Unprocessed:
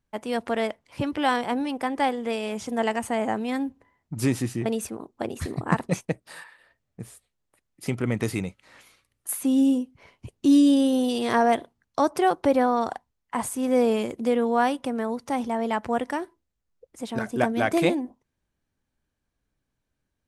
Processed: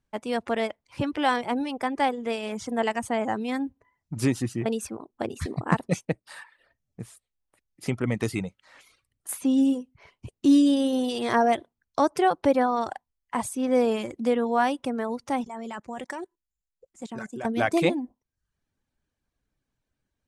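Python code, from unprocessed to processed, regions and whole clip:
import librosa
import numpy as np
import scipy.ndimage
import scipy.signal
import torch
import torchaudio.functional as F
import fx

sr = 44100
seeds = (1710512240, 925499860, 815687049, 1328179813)

y = fx.chain(x, sr, fx.peak_eq(hz=7200.0, db=13.5, octaves=0.29),
    fx.comb(ms=5.3, depth=0.39),
    fx.level_steps(step_db=17), at=(15.44, 17.45))
y = scipy.signal.sosfilt(scipy.signal.butter(2, 10000.0, 'lowpass', fs=sr, output='sos'), y)
y = fx.dereverb_blind(y, sr, rt60_s=0.54)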